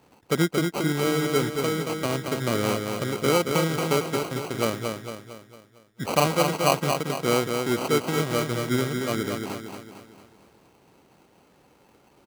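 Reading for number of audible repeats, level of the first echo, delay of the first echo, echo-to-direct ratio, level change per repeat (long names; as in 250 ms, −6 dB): 5, −5.0 dB, 227 ms, −4.0 dB, −6.5 dB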